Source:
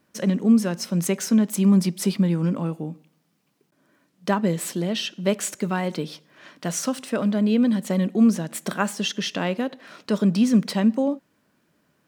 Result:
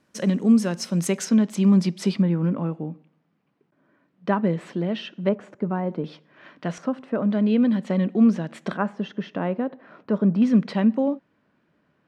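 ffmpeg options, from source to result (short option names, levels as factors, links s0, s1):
-af "asetnsamples=n=441:p=0,asendcmd='1.25 lowpass f 5200;2.22 lowpass f 2100;5.29 lowpass f 1000;6.04 lowpass f 2600;6.78 lowpass f 1300;7.31 lowpass f 3000;8.77 lowpass f 1300;10.42 lowpass f 2800',lowpass=9700"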